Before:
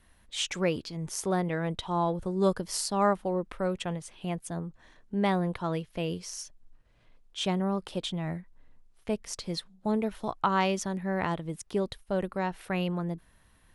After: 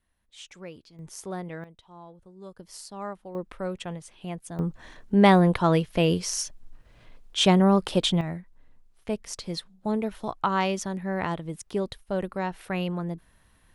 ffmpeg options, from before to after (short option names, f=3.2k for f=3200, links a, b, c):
-af "asetnsamples=n=441:p=0,asendcmd='0.99 volume volume -6.5dB;1.64 volume volume -19dB;2.59 volume volume -11dB;3.35 volume volume -2dB;4.59 volume volume 10dB;8.21 volume volume 1dB',volume=-14dB"